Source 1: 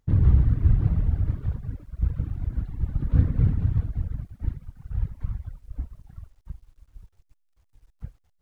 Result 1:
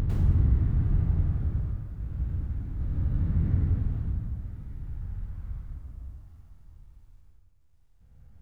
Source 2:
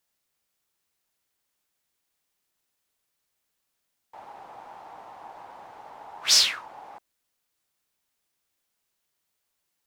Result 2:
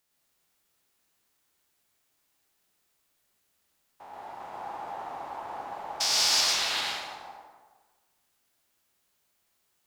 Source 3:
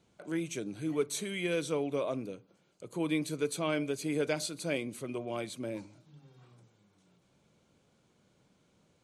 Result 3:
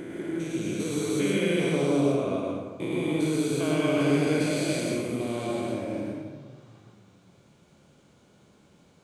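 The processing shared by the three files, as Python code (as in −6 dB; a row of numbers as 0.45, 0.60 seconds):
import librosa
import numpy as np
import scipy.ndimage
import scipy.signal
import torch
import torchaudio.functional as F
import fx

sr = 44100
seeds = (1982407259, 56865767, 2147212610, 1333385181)

y = fx.spec_steps(x, sr, hold_ms=400)
y = fx.rev_plate(y, sr, seeds[0], rt60_s=1.4, hf_ratio=0.6, predelay_ms=90, drr_db=-3.0)
y = y * 10.0 ** (-12 / 20.0) / np.max(np.abs(y))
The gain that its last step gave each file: −5.5, +3.0, +6.5 decibels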